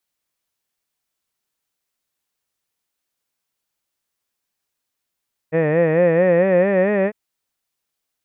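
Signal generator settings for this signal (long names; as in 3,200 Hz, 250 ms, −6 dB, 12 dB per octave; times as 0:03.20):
vowel by formant synthesis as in head, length 1.60 s, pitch 154 Hz, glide +5 semitones, vibrato 4.5 Hz, vibrato depth 1.05 semitones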